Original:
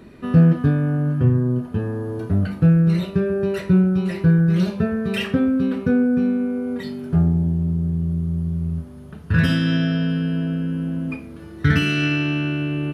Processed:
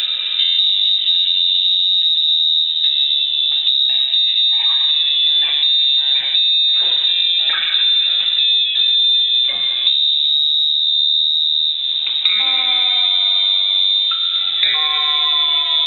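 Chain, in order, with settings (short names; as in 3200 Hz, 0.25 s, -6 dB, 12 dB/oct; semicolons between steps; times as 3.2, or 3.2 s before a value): speed glide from 57% -> 106%; notches 50/100/150 Hz; on a send at -5.5 dB: reverb RT60 1.7 s, pre-delay 93 ms; on the sum: inverted band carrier 3800 Hz; maximiser +12.5 dB; three-band squash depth 100%; gain -6.5 dB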